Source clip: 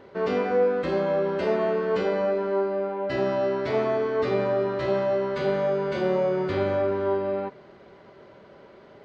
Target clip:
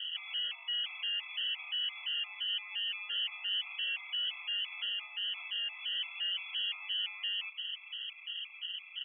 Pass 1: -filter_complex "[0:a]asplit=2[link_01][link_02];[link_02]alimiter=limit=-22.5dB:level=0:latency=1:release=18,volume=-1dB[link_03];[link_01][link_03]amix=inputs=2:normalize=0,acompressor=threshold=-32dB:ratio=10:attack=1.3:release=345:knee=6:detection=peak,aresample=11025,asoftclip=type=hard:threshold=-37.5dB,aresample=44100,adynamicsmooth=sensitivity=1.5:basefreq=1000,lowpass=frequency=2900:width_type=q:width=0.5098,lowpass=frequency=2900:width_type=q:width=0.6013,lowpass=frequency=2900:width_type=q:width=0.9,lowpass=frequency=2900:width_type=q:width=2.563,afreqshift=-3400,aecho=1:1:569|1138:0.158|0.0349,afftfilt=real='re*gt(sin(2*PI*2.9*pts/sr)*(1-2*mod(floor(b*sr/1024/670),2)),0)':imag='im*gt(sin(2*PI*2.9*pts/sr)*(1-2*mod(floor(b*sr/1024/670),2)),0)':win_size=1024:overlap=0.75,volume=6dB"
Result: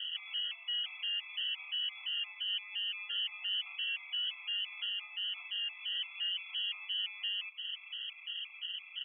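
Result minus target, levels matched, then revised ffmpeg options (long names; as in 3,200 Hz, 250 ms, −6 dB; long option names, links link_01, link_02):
downward compressor: peak gain reduction +6.5 dB
-filter_complex "[0:a]asplit=2[link_01][link_02];[link_02]alimiter=limit=-22.5dB:level=0:latency=1:release=18,volume=-1dB[link_03];[link_01][link_03]amix=inputs=2:normalize=0,acompressor=threshold=-25dB:ratio=10:attack=1.3:release=345:knee=6:detection=peak,aresample=11025,asoftclip=type=hard:threshold=-37.5dB,aresample=44100,adynamicsmooth=sensitivity=1.5:basefreq=1000,lowpass=frequency=2900:width_type=q:width=0.5098,lowpass=frequency=2900:width_type=q:width=0.6013,lowpass=frequency=2900:width_type=q:width=0.9,lowpass=frequency=2900:width_type=q:width=2.563,afreqshift=-3400,aecho=1:1:569|1138:0.158|0.0349,afftfilt=real='re*gt(sin(2*PI*2.9*pts/sr)*(1-2*mod(floor(b*sr/1024/670),2)),0)':imag='im*gt(sin(2*PI*2.9*pts/sr)*(1-2*mod(floor(b*sr/1024/670),2)),0)':win_size=1024:overlap=0.75,volume=6dB"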